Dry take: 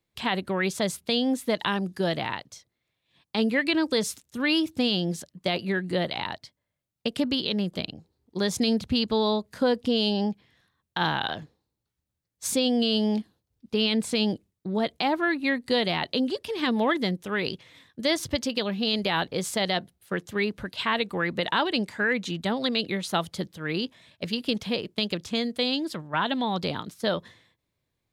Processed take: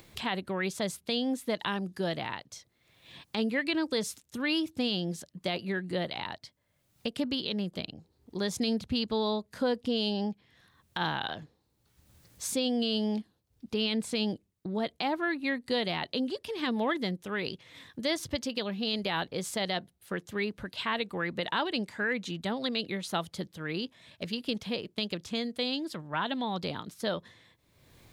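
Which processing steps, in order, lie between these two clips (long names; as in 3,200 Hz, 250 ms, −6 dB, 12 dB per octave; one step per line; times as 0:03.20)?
upward compression, threshold −28 dBFS
level −5.5 dB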